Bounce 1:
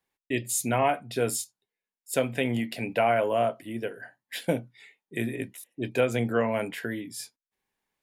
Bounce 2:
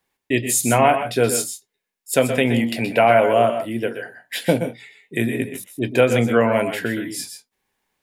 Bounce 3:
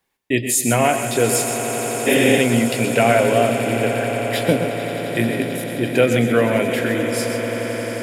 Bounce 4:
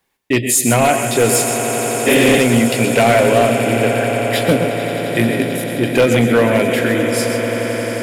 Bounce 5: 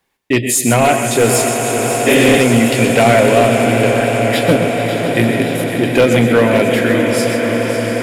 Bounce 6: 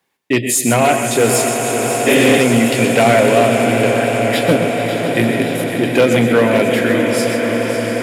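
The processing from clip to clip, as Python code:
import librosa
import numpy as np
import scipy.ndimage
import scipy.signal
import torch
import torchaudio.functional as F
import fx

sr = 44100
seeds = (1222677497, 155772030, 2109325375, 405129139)

y1 = fx.echo_multitap(x, sr, ms=(122, 134, 155), db=(-11.0, -12.0, -18.5))
y1 = y1 * 10.0 ** (8.5 / 20.0)
y2 = fx.dynamic_eq(y1, sr, hz=920.0, q=1.6, threshold_db=-29.0, ratio=4.0, max_db=-6)
y2 = fx.echo_swell(y2, sr, ms=88, loudest=8, wet_db=-14.5)
y2 = fx.spec_repair(y2, sr, seeds[0], start_s=2.09, length_s=0.27, low_hz=200.0, high_hz=9600.0, source='after')
y2 = y2 * 10.0 ** (1.0 / 20.0)
y3 = np.clip(y2, -10.0 ** (-11.0 / 20.0), 10.0 ** (-11.0 / 20.0))
y3 = y3 * 10.0 ** (4.5 / 20.0)
y4 = fx.high_shelf(y3, sr, hz=7700.0, db=-4.0)
y4 = fx.echo_warbled(y4, sr, ms=555, feedback_pct=68, rate_hz=2.8, cents=95, wet_db=-10.5)
y4 = y4 * 10.0 ** (1.5 / 20.0)
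y5 = scipy.signal.sosfilt(scipy.signal.butter(2, 110.0, 'highpass', fs=sr, output='sos'), y4)
y5 = y5 * 10.0 ** (-1.0 / 20.0)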